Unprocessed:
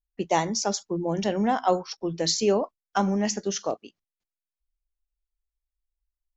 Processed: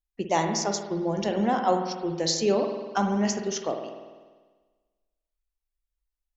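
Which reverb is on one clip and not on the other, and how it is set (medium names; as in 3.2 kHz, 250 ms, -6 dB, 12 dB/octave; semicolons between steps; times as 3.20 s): spring tank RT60 1.4 s, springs 49 ms, chirp 55 ms, DRR 4.5 dB; trim -1.5 dB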